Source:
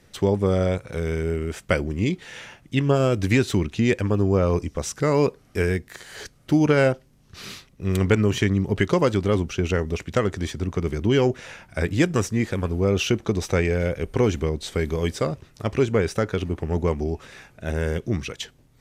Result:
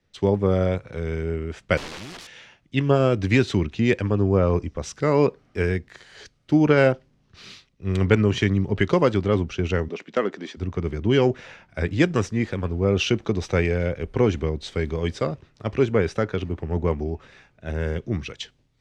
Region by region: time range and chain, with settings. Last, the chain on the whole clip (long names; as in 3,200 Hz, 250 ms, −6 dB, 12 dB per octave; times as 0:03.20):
0:01.77–0:02.27: leveller curve on the samples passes 5 + wrap-around overflow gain 26.5 dB
0:09.88–0:10.57: high-pass filter 210 Hz 24 dB per octave + high-frequency loss of the air 56 metres
whole clip: low-pass filter 4,700 Hz 12 dB per octave; multiband upward and downward expander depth 40%